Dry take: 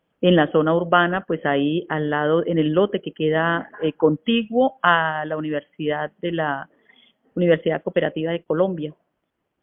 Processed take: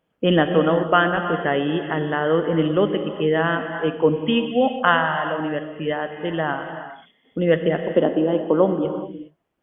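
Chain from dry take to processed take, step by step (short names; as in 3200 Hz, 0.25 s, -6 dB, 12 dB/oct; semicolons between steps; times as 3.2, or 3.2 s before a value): 7.96–8.85 graphic EQ 125/250/1000/2000 Hz -10/+12/+8/-12 dB; vibrato 5.8 Hz 10 cents; non-linear reverb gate 0.44 s flat, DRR 6.5 dB; gain -1 dB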